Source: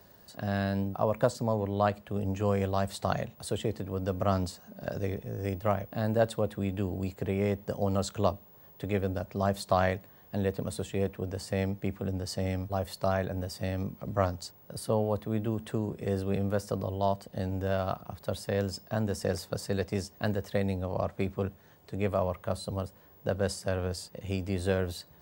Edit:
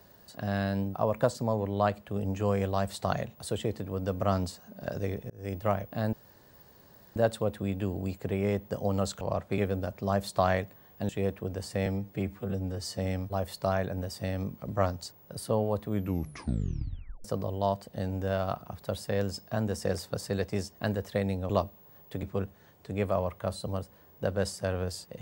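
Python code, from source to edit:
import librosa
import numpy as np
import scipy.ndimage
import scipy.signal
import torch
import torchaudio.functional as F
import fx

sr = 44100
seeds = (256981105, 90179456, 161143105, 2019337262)

y = fx.edit(x, sr, fx.fade_in_span(start_s=5.3, length_s=0.27),
    fx.insert_room_tone(at_s=6.13, length_s=1.03),
    fx.swap(start_s=8.18, length_s=0.73, other_s=20.89, other_length_s=0.37),
    fx.cut(start_s=10.42, length_s=0.44),
    fx.stretch_span(start_s=11.63, length_s=0.75, factor=1.5),
    fx.tape_stop(start_s=15.27, length_s=1.37), tone=tone)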